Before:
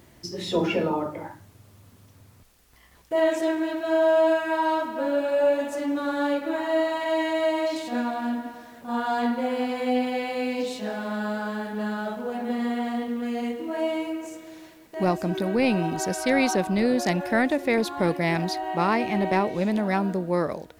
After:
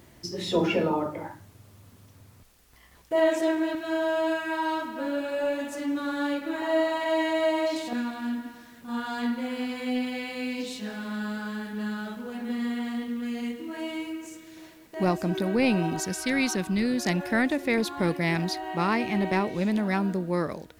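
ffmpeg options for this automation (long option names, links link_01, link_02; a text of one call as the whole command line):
ffmpeg -i in.wav -af "asetnsamples=nb_out_samples=441:pad=0,asendcmd='3.75 equalizer g -8;6.62 equalizer g -1;7.93 equalizer g -13;14.57 equalizer g -3;16 equalizer g -13.5;17.05 equalizer g -6',equalizer=frequency=660:width_type=o:width=1.3:gain=-0.5" out.wav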